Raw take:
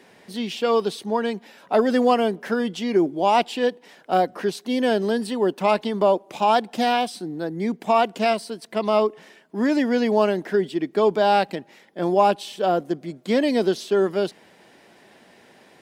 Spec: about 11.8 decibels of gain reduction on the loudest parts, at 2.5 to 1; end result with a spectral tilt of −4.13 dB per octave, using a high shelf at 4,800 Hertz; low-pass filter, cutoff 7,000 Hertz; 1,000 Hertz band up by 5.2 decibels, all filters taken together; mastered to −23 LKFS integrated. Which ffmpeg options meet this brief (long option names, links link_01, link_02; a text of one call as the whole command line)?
ffmpeg -i in.wav -af "lowpass=7000,equalizer=frequency=1000:width_type=o:gain=7.5,highshelf=frequency=4800:gain=-8.5,acompressor=threshold=-27dB:ratio=2.5,volume=5.5dB" out.wav